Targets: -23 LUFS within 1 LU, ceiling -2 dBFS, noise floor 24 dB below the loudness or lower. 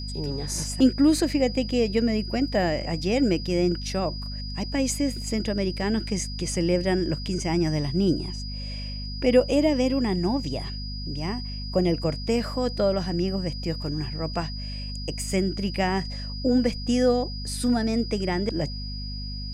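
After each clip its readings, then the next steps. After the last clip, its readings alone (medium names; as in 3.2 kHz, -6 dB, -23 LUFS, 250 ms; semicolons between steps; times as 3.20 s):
hum 50 Hz; highest harmonic 250 Hz; hum level -31 dBFS; steady tone 4.9 kHz; tone level -37 dBFS; loudness -26.0 LUFS; peak level -8.0 dBFS; loudness target -23.0 LUFS
-> de-hum 50 Hz, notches 5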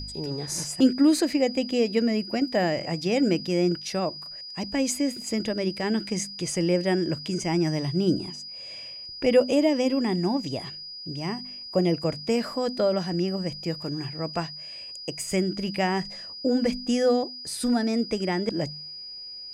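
hum not found; steady tone 4.9 kHz; tone level -37 dBFS
-> band-stop 4.9 kHz, Q 30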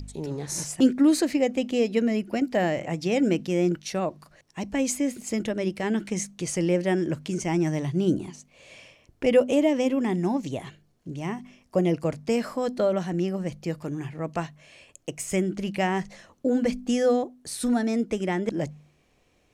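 steady tone not found; loudness -26.0 LUFS; peak level -9.0 dBFS; loudness target -23.0 LUFS
-> trim +3 dB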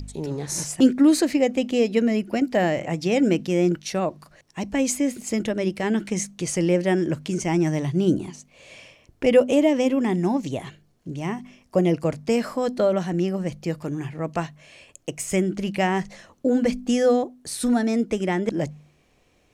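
loudness -23.0 LUFS; peak level -6.0 dBFS; noise floor -62 dBFS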